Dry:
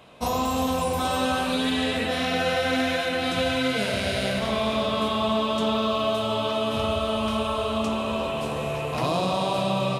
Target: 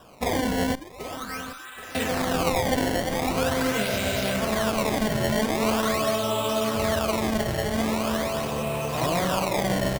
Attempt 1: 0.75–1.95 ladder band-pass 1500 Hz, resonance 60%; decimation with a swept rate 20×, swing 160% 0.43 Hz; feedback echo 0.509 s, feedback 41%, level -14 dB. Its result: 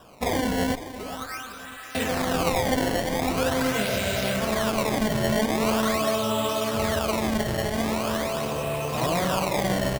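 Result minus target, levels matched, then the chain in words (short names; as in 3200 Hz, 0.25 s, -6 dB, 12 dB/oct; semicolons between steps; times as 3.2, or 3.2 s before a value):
echo 0.27 s early
0.75–1.95 ladder band-pass 1500 Hz, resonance 60%; decimation with a swept rate 20×, swing 160% 0.43 Hz; feedback echo 0.779 s, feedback 41%, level -14 dB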